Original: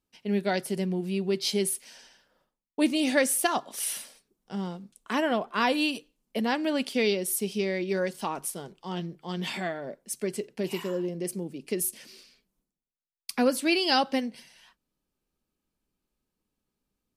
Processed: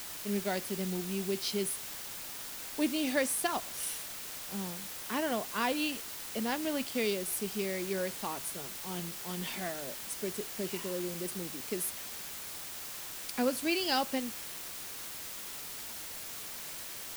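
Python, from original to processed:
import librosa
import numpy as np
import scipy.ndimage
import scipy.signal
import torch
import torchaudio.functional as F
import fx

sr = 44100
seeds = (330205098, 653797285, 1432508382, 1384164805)

y = fx.quant_dither(x, sr, seeds[0], bits=6, dither='triangular')
y = y * librosa.db_to_amplitude(-6.5)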